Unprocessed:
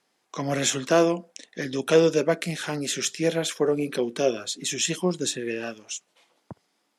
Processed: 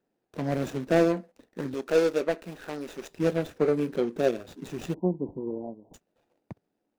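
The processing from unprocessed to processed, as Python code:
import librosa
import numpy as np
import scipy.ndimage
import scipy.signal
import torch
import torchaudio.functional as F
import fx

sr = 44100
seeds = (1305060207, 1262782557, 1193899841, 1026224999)

y = scipy.ndimage.median_filter(x, 41, mode='constant')
y = fx.peak_eq(y, sr, hz=130.0, db=-14.5, octaves=1.8, at=(1.74, 3.11))
y = fx.cheby_ripple(y, sr, hz=1000.0, ripple_db=3, at=(4.94, 5.94))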